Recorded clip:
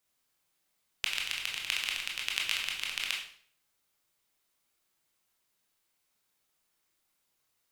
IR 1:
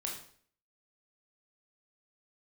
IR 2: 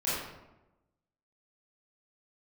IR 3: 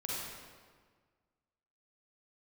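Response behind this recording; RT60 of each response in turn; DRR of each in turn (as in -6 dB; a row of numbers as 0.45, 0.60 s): 1; 0.55, 1.0, 1.6 s; -1.5, -11.0, -6.0 dB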